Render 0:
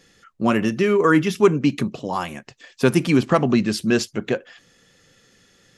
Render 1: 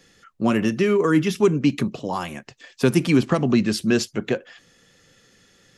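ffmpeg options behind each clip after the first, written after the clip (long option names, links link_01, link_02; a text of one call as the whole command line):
ffmpeg -i in.wav -filter_complex "[0:a]acrossover=split=410|3000[link_01][link_02][link_03];[link_02]acompressor=threshold=-23dB:ratio=6[link_04];[link_01][link_04][link_03]amix=inputs=3:normalize=0" out.wav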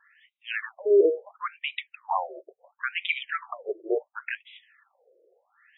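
ffmpeg -i in.wav -af "afftfilt=real='re*between(b*sr/1024,470*pow(2800/470,0.5+0.5*sin(2*PI*0.72*pts/sr))/1.41,470*pow(2800/470,0.5+0.5*sin(2*PI*0.72*pts/sr))*1.41)':imag='im*between(b*sr/1024,470*pow(2800/470,0.5+0.5*sin(2*PI*0.72*pts/sr))/1.41,470*pow(2800/470,0.5+0.5*sin(2*PI*0.72*pts/sr))*1.41)':win_size=1024:overlap=0.75,volume=2.5dB" out.wav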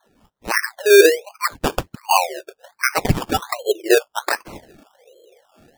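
ffmpeg -i in.wav -af "dynaudnorm=framelen=140:gausssize=5:maxgain=13dB,acrusher=samples=17:mix=1:aa=0.000001:lfo=1:lforange=10.2:lforate=1.3" out.wav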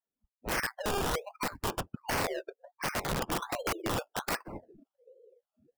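ffmpeg -i in.wav -af "afftdn=noise_reduction=34:noise_floor=-37,aeval=exprs='(tanh(3.16*val(0)+0.2)-tanh(0.2))/3.16':channel_layout=same,aeval=exprs='(mod(11.9*val(0)+1,2)-1)/11.9':channel_layout=same,volume=-4dB" out.wav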